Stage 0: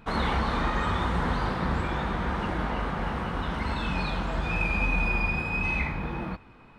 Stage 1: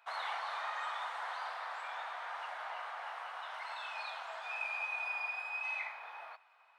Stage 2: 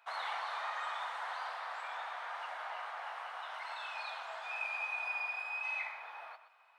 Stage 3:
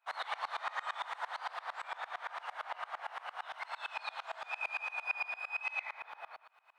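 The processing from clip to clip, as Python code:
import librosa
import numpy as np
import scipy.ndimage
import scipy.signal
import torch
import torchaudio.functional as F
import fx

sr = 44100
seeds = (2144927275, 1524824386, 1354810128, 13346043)

y1 = scipy.signal.sosfilt(scipy.signal.ellip(4, 1.0, 80, 670.0, 'highpass', fs=sr, output='sos'), x)
y1 = y1 * 10.0 ** (-8.5 / 20.0)
y2 = y1 + 10.0 ** (-12.5 / 20.0) * np.pad(y1, (int(123 * sr / 1000.0), 0))[:len(y1)]
y3 = fx.tremolo_decay(y2, sr, direction='swelling', hz=8.8, depth_db=25)
y3 = y3 * 10.0 ** (7.0 / 20.0)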